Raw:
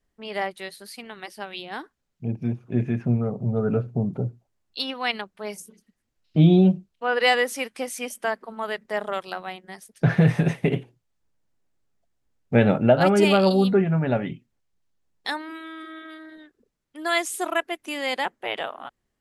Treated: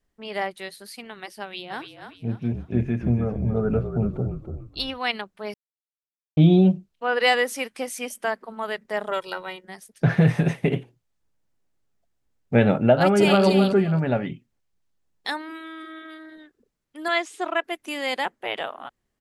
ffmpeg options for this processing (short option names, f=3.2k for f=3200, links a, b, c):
-filter_complex "[0:a]asplit=3[a][b][c];[a]afade=t=out:st=1.69:d=0.02[d];[b]asplit=5[e][f][g][h][i];[f]adelay=288,afreqshift=-41,volume=-8dB[j];[g]adelay=576,afreqshift=-82,volume=-16.6dB[k];[h]adelay=864,afreqshift=-123,volume=-25.3dB[l];[i]adelay=1152,afreqshift=-164,volume=-33.9dB[m];[e][j][k][l][m]amix=inputs=5:normalize=0,afade=t=in:st=1.69:d=0.02,afade=t=out:st=4.98:d=0.02[n];[c]afade=t=in:st=4.98:d=0.02[o];[d][n][o]amix=inputs=3:normalize=0,asettb=1/sr,asplit=3[p][q][r];[p]atrim=end=9.114[s];[q]atrim=start=9.11:end=9.65,asetpts=PTS-STARTPTS,afade=t=in:d=0.004:c=qsin,afade=t=out:st=0.536:d=0.004:c=qsin,aecho=1:1:2.1:0.72,atrim=end_sample=23814[t];[r]atrim=start=9.646[u];[s][t]acrossfade=d=0.004:c1=hsin:c2=qsin[v];[v][u]acrossfade=d=0.004:c1=qsin:c2=hsin,asplit=2[w][x];[x]afade=t=in:st=12.93:d=0.01,afade=t=out:st=13.45:d=0.01,aecho=0:1:270|540|810:0.421697|0.0843393|0.0168679[y];[w][y]amix=inputs=2:normalize=0,asettb=1/sr,asplit=3[z][aa][ab];[z]atrim=end=17.084[ac];[aa]atrim=start=17.08:end=17.64,asetpts=PTS-STARTPTS,afade=t=in:d=0.004:c=qsin,afade=t=out:st=0.556:d=0.004:c=qsin,highpass=250,lowpass=4.3k[ad];[ab]atrim=start=17.636[ae];[ac][ad]acrossfade=d=0.004:c1=hsin:c2=qsin[af];[af][ae]acrossfade=d=0.004:c1=qsin:c2=hsin,asplit=3[ag][ah][ai];[ag]atrim=end=5.54,asetpts=PTS-STARTPTS,afade=t=out:st=5.536:d=0.004:c=hsin[aj];[ah]atrim=start=5.54:end=6.37,asetpts=PTS-STARTPTS,volume=0[ak];[ai]atrim=start=6.37,asetpts=PTS-STARTPTS,afade=t=in:d=0.004:c=hsin[al];[aj][ak][al]concat=n=3:v=0:a=1"